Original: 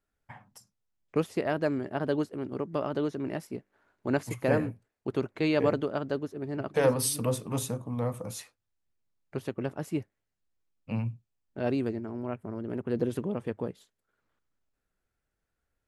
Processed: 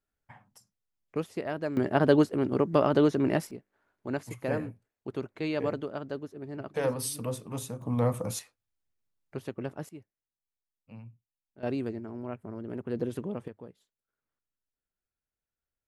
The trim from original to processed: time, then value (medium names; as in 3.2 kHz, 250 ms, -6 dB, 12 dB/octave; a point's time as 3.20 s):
-4.5 dB
from 1.77 s +7.5 dB
from 3.51 s -5 dB
from 7.82 s +4.5 dB
from 8.39 s -3 dB
from 9.89 s -15.5 dB
from 11.63 s -3 dB
from 13.48 s -12.5 dB